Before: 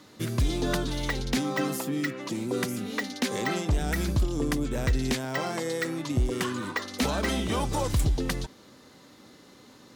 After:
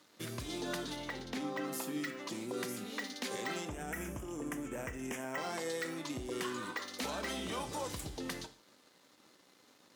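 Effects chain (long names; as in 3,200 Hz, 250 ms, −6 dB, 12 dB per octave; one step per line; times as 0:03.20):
0:00.96–0:01.73: high-shelf EQ 3,300 Hz −10 dB
brickwall limiter −22 dBFS, peak gain reduction 5 dB
0:03.65–0:05.38: Butterworth band-reject 4,200 Hz, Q 1.3
dead-zone distortion −56 dBFS
high-pass filter 390 Hz 6 dB per octave
reverb whose tail is shaped and stops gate 170 ms falling, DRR 9 dB
level −5 dB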